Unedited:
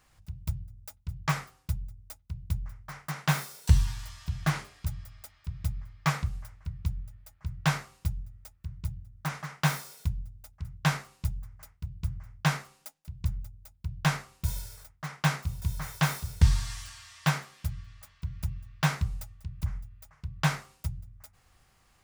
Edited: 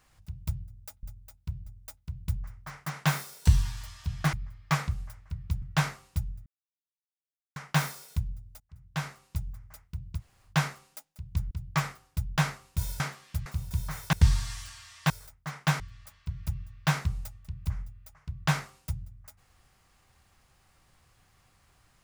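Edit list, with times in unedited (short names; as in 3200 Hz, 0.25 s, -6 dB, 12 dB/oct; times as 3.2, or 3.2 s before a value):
1.03–1.88 swap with 13.4–14.03
4.55–5.68 cut
6.97–7.51 cut
8.35–9.45 mute
10.49–11.5 fade in, from -19.5 dB
12.07–12.38 room tone, crossfade 0.10 s
14.67–15.37 swap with 17.3–17.76
16.04–16.33 cut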